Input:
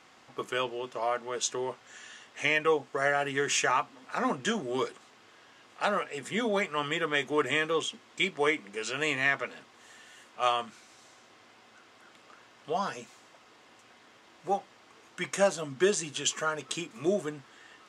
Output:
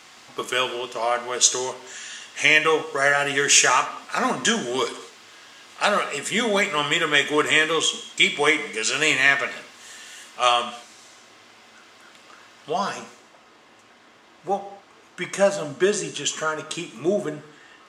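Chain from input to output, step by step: high shelf 2300 Hz +10.5 dB, from 10.62 s +5 dB, from 12.99 s -2 dB; non-linear reverb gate 0.27 s falling, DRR 8.5 dB; gain +5 dB

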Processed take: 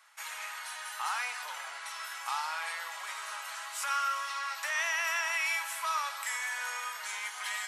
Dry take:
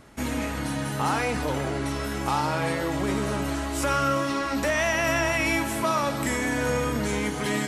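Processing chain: inverse Chebyshev high-pass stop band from 290 Hz, stop band 60 dB; gain -4.5 dB

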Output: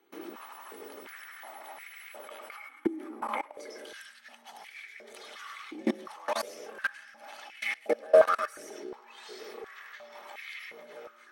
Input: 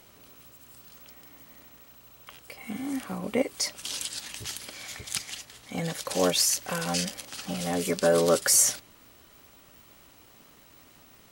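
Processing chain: bin magnitudes rounded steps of 15 dB; compressor 2:1, threshold -43 dBFS, peak gain reduction 14 dB; echoes that change speed 0.118 s, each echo -6 st, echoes 2, each echo -6 dB; darkening echo 0.158 s, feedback 63%, low-pass 4200 Hz, level -15.5 dB; frequency shift +45 Hz; reverb RT60 0.45 s, pre-delay 0.1 s, DRR 4 dB; level quantiser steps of 24 dB; stepped high-pass 2.8 Hz 340–2100 Hz

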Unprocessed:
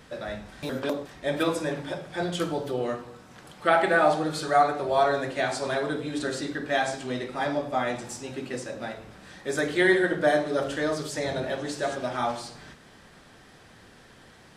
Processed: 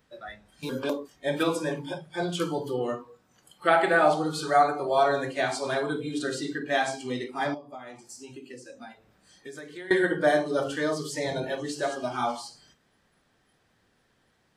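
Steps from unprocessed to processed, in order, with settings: spectral noise reduction 16 dB; 7.54–9.91 compressor 5:1, threshold -41 dBFS, peak gain reduction 21.5 dB

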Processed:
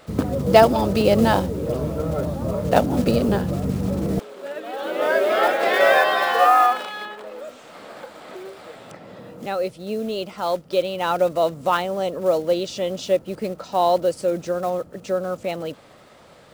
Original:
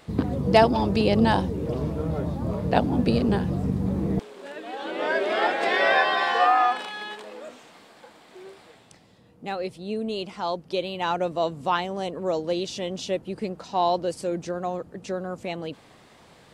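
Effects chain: block floating point 5-bit; small resonant body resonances 570/1300 Hz, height 8 dB, ringing for 20 ms; 7.05–9.46 three-band squash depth 100%; gain +1.5 dB

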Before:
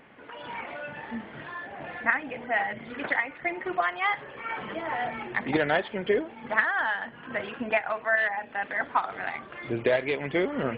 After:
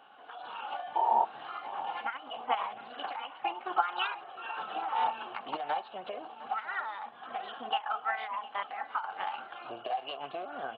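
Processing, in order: compressor 4:1, threshold -30 dBFS, peak gain reduction 11.5 dB; painted sound noise, 0.95–1.25, 330–960 Hz -27 dBFS; vowel filter a; formant shift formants +3 st; on a send: echo 0.708 s -17 dB; on the sum: gain +8.5 dB

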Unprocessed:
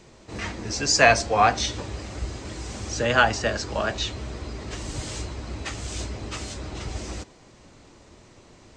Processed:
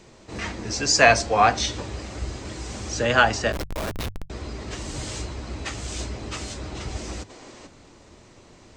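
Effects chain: 3.52–4.3 Schmitt trigger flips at -24.5 dBFS; 7.3–7.67 spectral gain 230–8900 Hz +8 dB; notches 50/100/150 Hz; gain +1 dB

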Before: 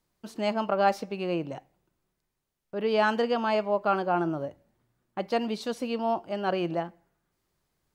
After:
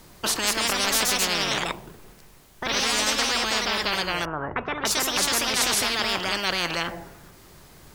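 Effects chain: 4.25–5.54 LPF 1400 Hz 24 dB/oct; echoes that change speed 0.228 s, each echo +2 st, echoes 2; spectral compressor 10:1

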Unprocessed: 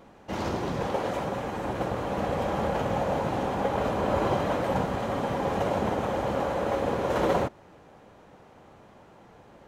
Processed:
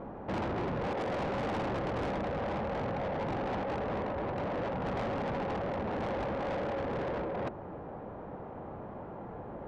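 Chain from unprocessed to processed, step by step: LPF 1100 Hz 12 dB/oct; negative-ratio compressor -33 dBFS, ratio -1; soft clip -38 dBFS, distortion -7 dB; gain +6.5 dB

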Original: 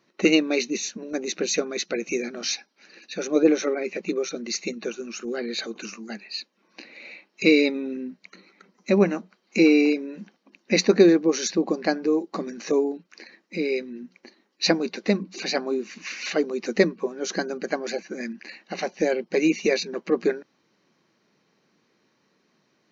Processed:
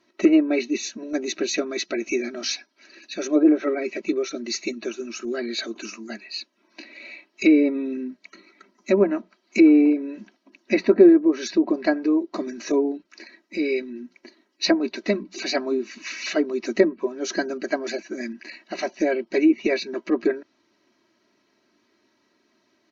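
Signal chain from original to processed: comb 3.1 ms, depth 84%; treble ducked by the level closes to 1200 Hz, closed at -12.5 dBFS; gain -1 dB

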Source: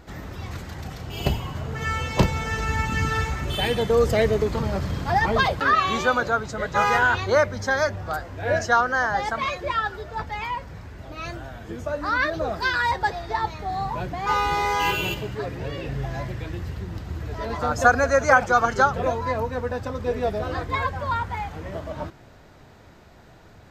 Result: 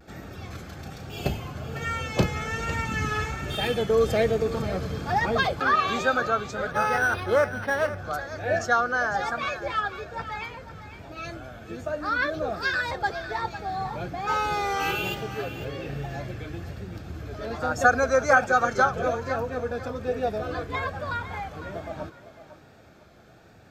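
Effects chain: notch comb 970 Hz; vibrato 1.2 Hz 64 cents; on a send: thinning echo 0.503 s, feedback 27%, level -12 dB; 6.71–7.98 on the sum: decimation joined by straight lines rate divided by 6×; gain -2 dB

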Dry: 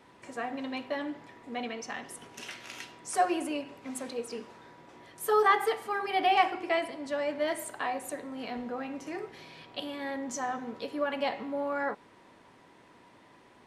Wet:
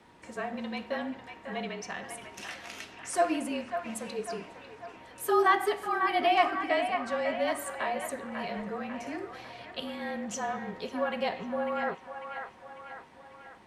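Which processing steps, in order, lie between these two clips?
band-limited delay 0.546 s, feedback 52%, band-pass 1400 Hz, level -5.5 dB; frequency shift -36 Hz

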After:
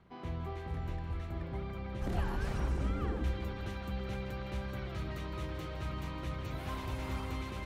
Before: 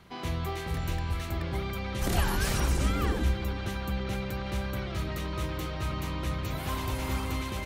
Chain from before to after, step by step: LPF 1200 Hz 6 dB/oct, from 3.24 s 3700 Hz; split-band echo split 320 Hz, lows 0.267 s, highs 0.161 s, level -12.5 dB; gain -6.5 dB

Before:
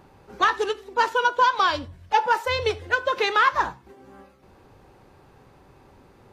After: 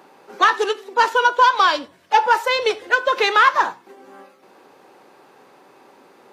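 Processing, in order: Bessel high-pass 340 Hz, order 4; in parallel at -11 dB: soft clip -23 dBFS, distortion -7 dB; on the sum: gain +4.5 dB

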